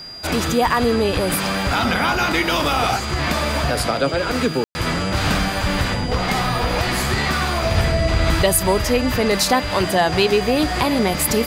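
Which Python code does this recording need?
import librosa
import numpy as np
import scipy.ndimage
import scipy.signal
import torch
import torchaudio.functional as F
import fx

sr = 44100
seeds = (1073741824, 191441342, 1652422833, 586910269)

y = fx.fix_declip(x, sr, threshold_db=-7.0)
y = fx.notch(y, sr, hz=4800.0, q=30.0)
y = fx.fix_ambience(y, sr, seeds[0], print_start_s=0.0, print_end_s=0.5, start_s=4.64, end_s=4.75)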